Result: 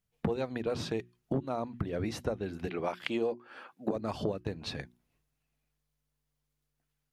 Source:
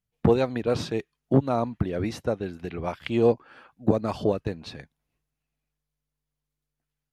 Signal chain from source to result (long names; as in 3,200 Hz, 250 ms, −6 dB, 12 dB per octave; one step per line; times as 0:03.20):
0:02.67–0:03.96: high-pass filter 240 Hz 12 dB per octave
downward compressor 5 to 1, threshold −32 dBFS, peak gain reduction 16.5 dB
mains-hum notches 60/120/180/240/300/360 Hz
level +2.5 dB